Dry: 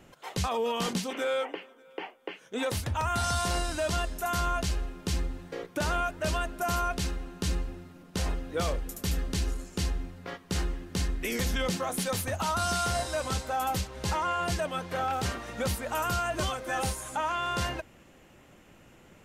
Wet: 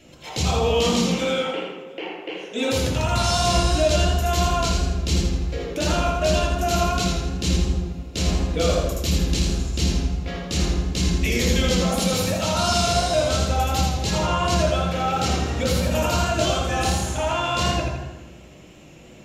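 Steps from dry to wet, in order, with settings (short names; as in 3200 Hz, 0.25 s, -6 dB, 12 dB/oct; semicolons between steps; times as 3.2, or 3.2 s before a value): reverb RT60 1.2 s, pre-delay 3 ms, DRR 1.5 dB; warbling echo 82 ms, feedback 47%, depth 52 cents, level -4 dB; gain +1.5 dB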